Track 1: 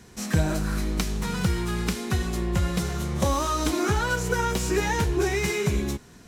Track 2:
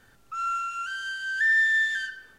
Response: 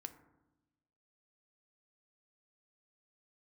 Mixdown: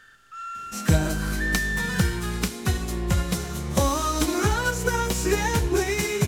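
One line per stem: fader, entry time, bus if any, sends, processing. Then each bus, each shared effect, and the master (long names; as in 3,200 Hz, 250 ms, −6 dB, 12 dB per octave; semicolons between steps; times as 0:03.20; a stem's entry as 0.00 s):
+1.0 dB, 0.55 s, send −4 dB, high-shelf EQ 6,200 Hz +5.5 dB; expander for the loud parts 1.5 to 1, over −32 dBFS
−7.5 dB, 0.00 s, no send, compressor on every frequency bin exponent 0.6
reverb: on, RT60 1.0 s, pre-delay 3 ms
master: no processing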